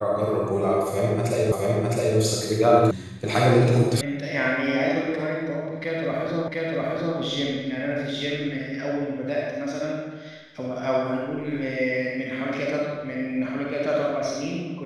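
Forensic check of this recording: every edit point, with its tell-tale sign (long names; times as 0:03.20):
0:01.52: the same again, the last 0.66 s
0:02.91: cut off before it has died away
0:04.01: cut off before it has died away
0:06.48: the same again, the last 0.7 s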